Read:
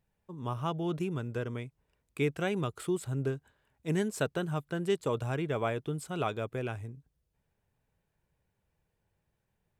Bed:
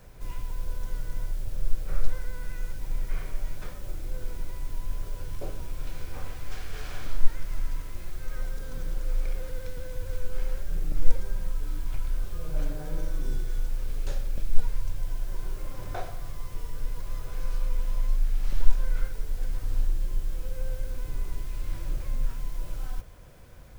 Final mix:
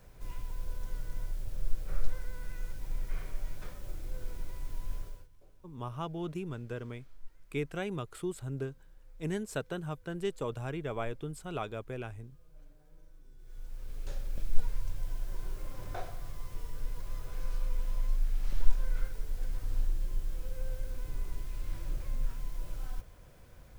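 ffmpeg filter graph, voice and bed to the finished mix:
-filter_complex "[0:a]adelay=5350,volume=0.596[s0];[1:a]volume=6.68,afade=t=out:st=4.96:d=0.32:silence=0.0841395,afade=t=in:st=13.37:d=1.08:silence=0.0794328[s1];[s0][s1]amix=inputs=2:normalize=0"

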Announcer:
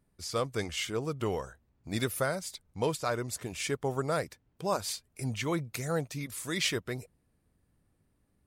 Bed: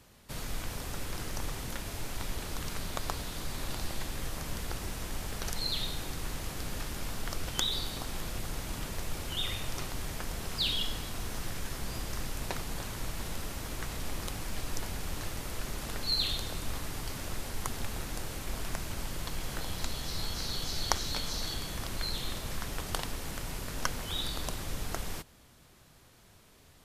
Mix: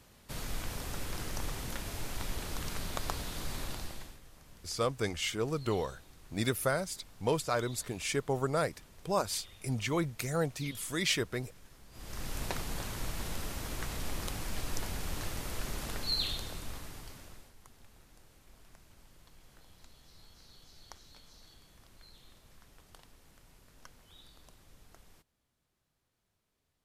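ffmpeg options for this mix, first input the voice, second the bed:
-filter_complex "[0:a]adelay=4450,volume=1[s0];[1:a]volume=7.94,afade=t=out:st=3.55:d=0.65:silence=0.11885,afade=t=in:st=11.91:d=0.46:silence=0.112202,afade=t=out:st=15.78:d=1.76:silence=0.0794328[s1];[s0][s1]amix=inputs=2:normalize=0"

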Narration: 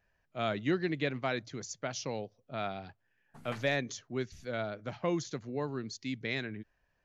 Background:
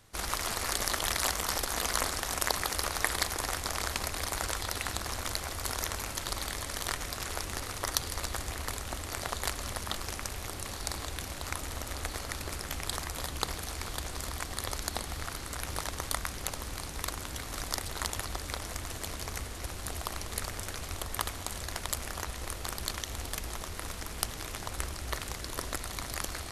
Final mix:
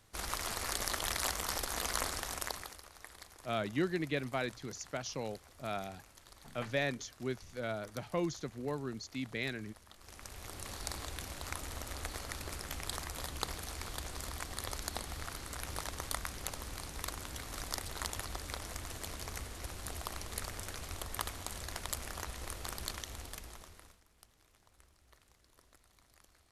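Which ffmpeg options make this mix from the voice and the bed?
-filter_complex "[0:a]adelay=3100,volume=0.75[s0];[1:a]volume=4.22,afade=t=out:st=2.17:d=0.64:silence=0.133352,afade=t=in:st=9.97:d=0.76:silence=0.133352,afade=t=out:st=22.82:d=1.19:silence=0.0630957[s1];[s0][s1]amix=inputs=2:normalize=0"

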